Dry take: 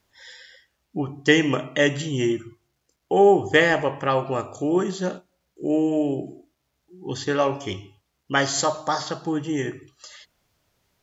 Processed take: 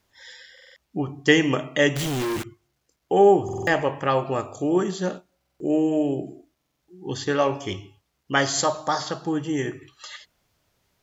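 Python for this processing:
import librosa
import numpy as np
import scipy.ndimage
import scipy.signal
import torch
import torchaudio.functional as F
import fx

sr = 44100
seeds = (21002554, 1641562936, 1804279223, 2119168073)

y = fx.quant_companded(x, sr, bits=2, at=(1.96, 2.44))
y = fx.spec_box(y, sr, start_s=9.82, length_s=0.34, low_hz=790.0, high_hz=4300.0, gain_db=8)
y = fx.buffer_glitch(y, sr, at_s=(0.53, 3.44, 5.37, 6.57), block=2048, repeats=4)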